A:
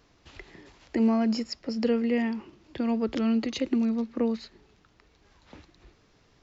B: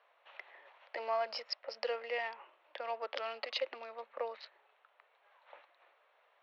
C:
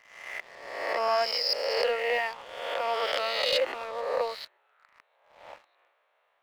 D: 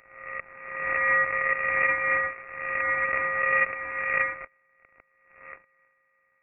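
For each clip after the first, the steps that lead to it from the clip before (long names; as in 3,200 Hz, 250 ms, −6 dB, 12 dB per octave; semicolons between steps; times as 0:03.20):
adaptive Wiener filter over 9 samples; Chebyshev band-pass filter 550–5,000 Hz, order 4
peak hold with a rise ahead of every peak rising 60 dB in 1.28 s; leveller curve on the samples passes 2
samples sorted by size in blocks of 64 samples; voice inversion scrambler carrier 2,600 Hz; level +3.5 dB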